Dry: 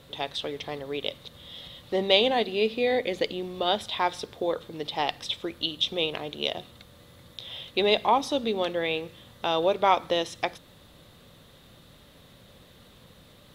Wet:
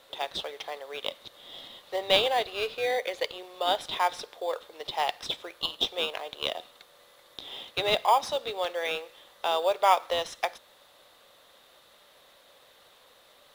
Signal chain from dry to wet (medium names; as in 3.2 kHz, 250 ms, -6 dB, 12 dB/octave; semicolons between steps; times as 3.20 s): high-pass 540 Hz 24 dB/octave; in parallel at -10 dB: sample-and-hold 11×; on the sum: trim -1.5 dB